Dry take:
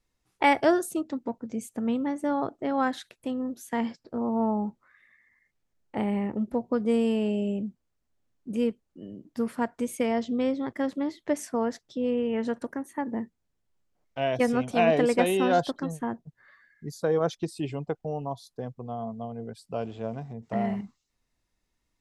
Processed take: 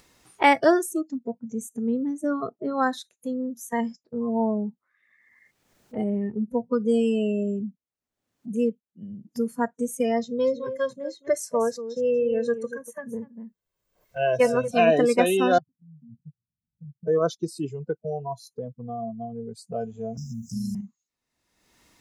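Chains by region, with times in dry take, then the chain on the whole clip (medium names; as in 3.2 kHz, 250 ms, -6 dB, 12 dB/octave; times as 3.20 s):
10.23–14.68 s: comb 1.9 ms, depth 49% + delay 239 ms -10 dB
15.58–17.08 s: inverse Chebyshev low-pass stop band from 940 Hz, stop band 80 dB + compression 3:1, threshold -53 dBFS
20.17–20.75 s: Chebyshev band-stop 230–5100 Hz, order 4 + spectrum-flattening compressor 2:1
whole clip: spectral noise reduction 21 dB; high-pass 190 Hz 6 dB/octave; upward compressor, threshold -35 dBFS; trim +4 dB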